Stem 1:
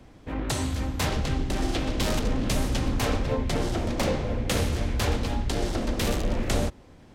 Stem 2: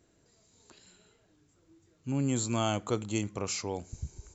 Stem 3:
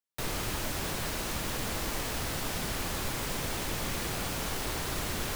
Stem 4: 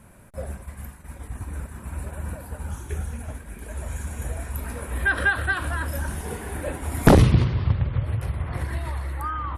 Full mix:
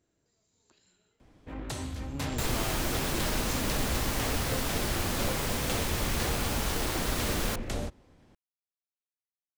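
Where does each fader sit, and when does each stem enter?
-8.5 dB, -9.0 dB, +2.0 dB, mute; 1.20 s, 0.00 s, 2.20 s, mute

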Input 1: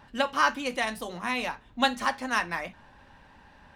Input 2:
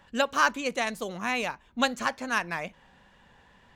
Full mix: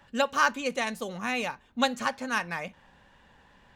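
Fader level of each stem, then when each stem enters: -10.0 dB, -1.5 dB; 0.00 s, 0.00 s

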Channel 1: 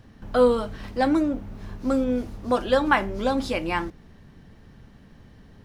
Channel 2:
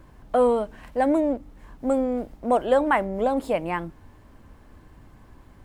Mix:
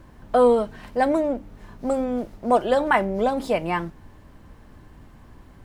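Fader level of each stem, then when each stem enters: -6.5 dB, +1.5 dB; 0.00 s, 0.00 s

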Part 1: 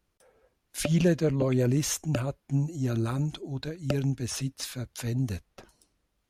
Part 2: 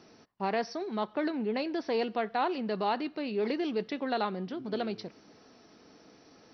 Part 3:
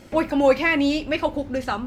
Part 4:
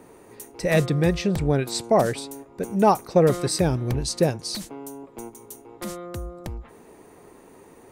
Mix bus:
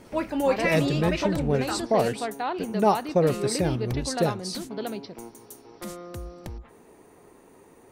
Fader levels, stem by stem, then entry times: mute, 0.0 dB, -6.5 dB, -4.0 dB; mute, 0.05 s, 0.00 s, 0.00 s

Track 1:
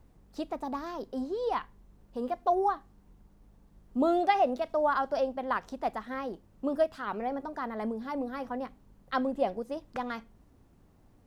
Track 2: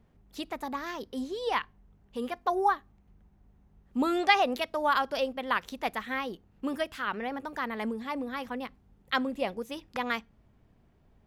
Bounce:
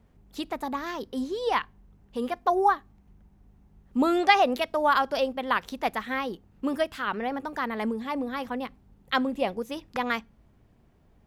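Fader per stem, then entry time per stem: -8.5 dB, +2.0 dB; 0.00 s, 0.00 s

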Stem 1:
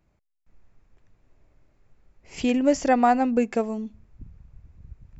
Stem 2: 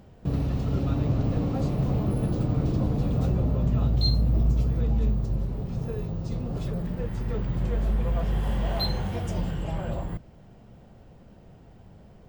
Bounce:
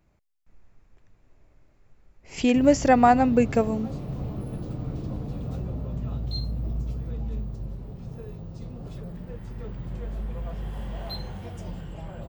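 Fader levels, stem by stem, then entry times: +2.0 dB, -7.5 dB; 0.00 s, 2.30 s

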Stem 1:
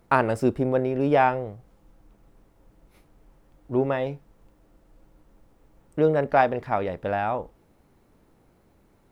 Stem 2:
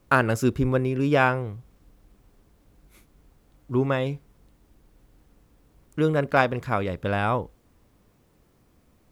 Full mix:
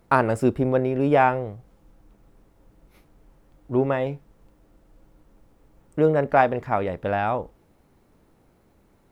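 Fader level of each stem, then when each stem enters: +0.5 dB, -14.0 dB; 0.00 s, 0.00 s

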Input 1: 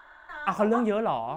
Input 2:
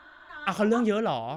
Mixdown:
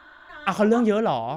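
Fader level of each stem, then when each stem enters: -6.5 dB, +2.0 dB; 0.00 s, 0.00 s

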